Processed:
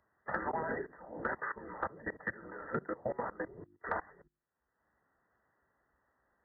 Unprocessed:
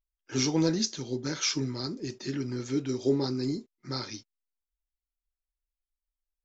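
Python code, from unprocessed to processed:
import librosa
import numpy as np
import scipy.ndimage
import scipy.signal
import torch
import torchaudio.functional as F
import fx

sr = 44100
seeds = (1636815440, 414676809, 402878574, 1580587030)

y = fx.spec_gate(x, sr, threshold_db=-15, keep='weak')
y = scipy.signal.sosfilt(scipy.signal.butter(2, 43.0, 'highpass', fs=sr, output='sos'), y)
y = fx.hum_notches(y, sr, base_hz=50, count=7)
y = fx.level_steps(y, sr, step_db=22)
y = fx.brickwall_lowpass(y, sr, high_hz=2000.0)
y = fx.band_squash(y, sr, depth_pct=100)
y = y * librosa.db_to_amplitude(13.0)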